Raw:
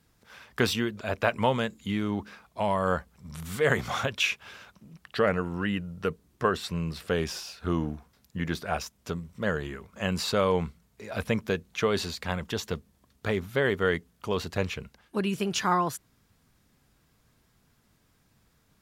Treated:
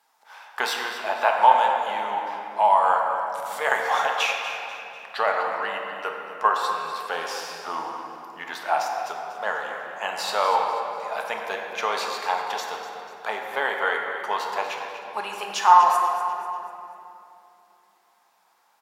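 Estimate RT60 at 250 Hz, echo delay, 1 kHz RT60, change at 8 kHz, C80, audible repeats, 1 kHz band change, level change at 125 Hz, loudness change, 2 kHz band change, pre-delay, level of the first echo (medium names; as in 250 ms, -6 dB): 4.1 s, 245 ms, 2.7 s, +1.5 dB, 2.5 dB, 2, +13.0 dB, under -25 dB, +5.0 dB, +5.0 dB, 3 ms, -11.5 dB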